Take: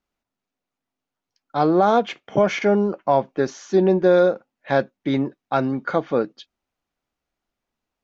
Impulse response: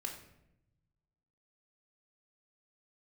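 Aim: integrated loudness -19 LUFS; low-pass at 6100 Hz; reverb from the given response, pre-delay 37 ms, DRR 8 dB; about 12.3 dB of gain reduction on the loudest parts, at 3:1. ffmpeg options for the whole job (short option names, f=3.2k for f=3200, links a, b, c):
-filter_complex "[0:a]lowpass=6.1k,acompressor=threshold=-29dB:ratio=3,asplit=2[a][b];[1:a]atrim=start_sample=2205,adelay=37[c];[b][c]afir=irnorm=-1:irlink=0,volume=-7.5dB[d];[a][d]amix=inputs=2:normalize=0,volume=11.5dB"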